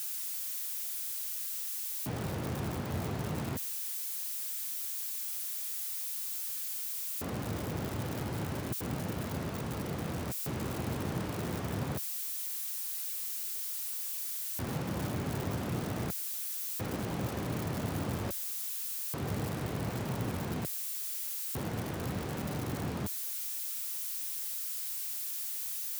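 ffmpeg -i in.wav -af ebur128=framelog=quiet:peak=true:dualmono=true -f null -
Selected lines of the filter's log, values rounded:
Integrated loudness:
  I:         -31.8 LUFS
  Threshold: -41.8 LUFS
Loudness range:
  LRA:         1.9 LU
  Threshold: -51.9 LUFS
  LRA low:   -33.0 LUFS
  LRA high:  -31.1 LUFS
True peak:
  Peak:      -21.2 dBFS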